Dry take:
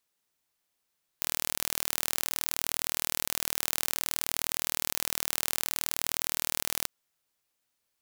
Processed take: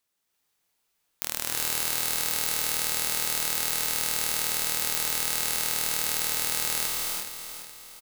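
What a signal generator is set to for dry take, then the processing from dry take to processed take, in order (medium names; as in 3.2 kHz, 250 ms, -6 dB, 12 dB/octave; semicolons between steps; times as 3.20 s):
pulse train 39.4 per s, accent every 0, -2 dBFS 5.64 s
feedback delay 421 ms, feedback 44%, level -9.5 dB; gated-style reverb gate 390 ms rising, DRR -2.5 dB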